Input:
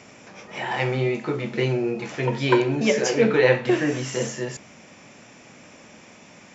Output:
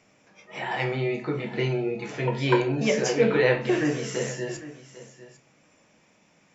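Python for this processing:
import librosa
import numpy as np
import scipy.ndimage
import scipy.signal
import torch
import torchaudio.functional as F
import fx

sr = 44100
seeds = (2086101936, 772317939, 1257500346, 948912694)

p1 = fx.noise_reduce_blind(x, sr, reduce_db=11)
p2 = p1 + fx.echo_single(p1, sr, ms=800, db=-16.0, dry=0)
p3 = fx.room_shoebox(p2, sr, seeds[0], volume_m3=120.0, walls='furnished', distance_m=0.57)
y = F.gain(torch.from_numpy(p3), -3.5).numpy()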